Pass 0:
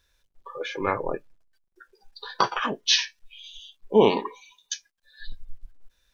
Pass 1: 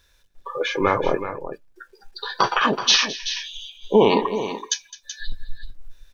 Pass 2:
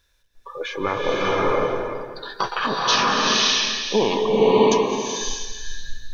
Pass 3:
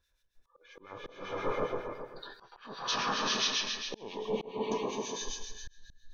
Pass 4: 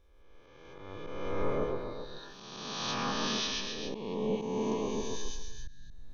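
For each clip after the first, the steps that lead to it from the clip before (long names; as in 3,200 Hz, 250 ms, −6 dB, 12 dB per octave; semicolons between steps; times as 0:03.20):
brickwall limiter −13.5 dBFS, peak gain reduction 7.5 dB; on a send: multi-tap delay 211/379 ms −17/−11 dB; on the sum: level +8 dB
slow-attack reverb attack 600 ms, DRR −5.5 dB; level −5 dB
volume swells 479 ms; two-band tremolo in antiphase 7.4 Hz, depth 70%, crossover 1,500 Hz; level −8.5 dB
peak hold with a rise ahead of every peak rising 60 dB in 1.66 s; low-shelf EQ 420 Hz +10.5 dB; level −7.5 dB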